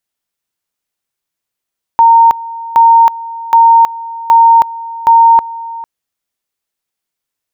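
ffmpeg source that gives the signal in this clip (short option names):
-f lavfi -i "aevalsrc='pow(10,(-2-18.5*gte(mod(t,0.77),0.32))/20)*sin(2*PI*920*t)':d=3.85:s=44100"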